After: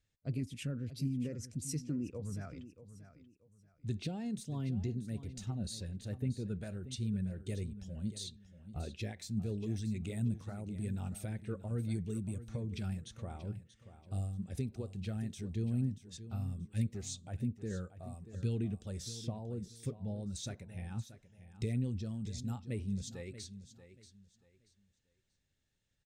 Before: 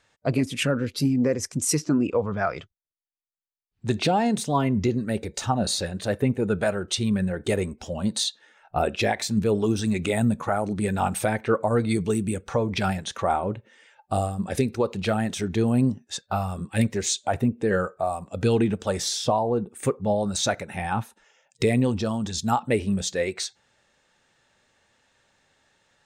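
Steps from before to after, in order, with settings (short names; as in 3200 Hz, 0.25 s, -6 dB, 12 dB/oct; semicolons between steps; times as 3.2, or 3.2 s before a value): passive tone stack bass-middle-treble 10-0-1; on a send: feedback echo 0.633 s, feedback 26%, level -13.5 dB; on the sum: gain +3 dB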